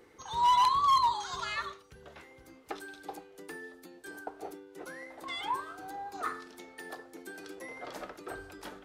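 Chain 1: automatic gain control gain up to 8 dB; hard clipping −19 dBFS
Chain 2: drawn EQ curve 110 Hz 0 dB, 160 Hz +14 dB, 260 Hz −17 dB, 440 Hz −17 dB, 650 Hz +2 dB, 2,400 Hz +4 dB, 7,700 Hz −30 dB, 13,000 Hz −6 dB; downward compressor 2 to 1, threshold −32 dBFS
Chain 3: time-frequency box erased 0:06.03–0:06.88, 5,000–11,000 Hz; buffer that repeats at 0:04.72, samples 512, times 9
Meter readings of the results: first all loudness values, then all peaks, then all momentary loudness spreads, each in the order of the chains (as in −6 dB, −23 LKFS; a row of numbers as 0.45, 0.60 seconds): −28.5, −36.5, −31.0 LKFS; −19.0, −22.0, −20.5 dBFS; 19, 20, 22 LU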